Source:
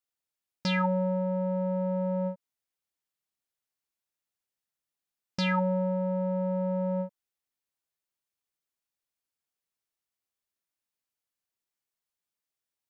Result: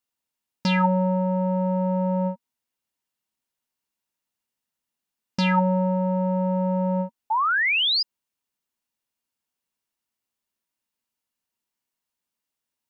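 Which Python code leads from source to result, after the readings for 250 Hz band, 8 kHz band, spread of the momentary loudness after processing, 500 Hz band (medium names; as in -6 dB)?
+6.5 dB, no reading, 9 LU, +3.5 dB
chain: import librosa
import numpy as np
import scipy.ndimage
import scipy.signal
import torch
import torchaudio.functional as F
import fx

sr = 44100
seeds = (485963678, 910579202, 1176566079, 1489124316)

y = fx.small_body(x, sr, hz=(230.0, 940.0, 2800.0), ring_ms=45, db=8)
y = fx.spec_paint(y, sr, seeds[0], shape='rise', start_s=7.3, length_s=0.73, low_hz=840.0, high_hz=5100.0, level_db=-25.0)
y = F.gain(torch.from_numpy(y), 3.5).numpy()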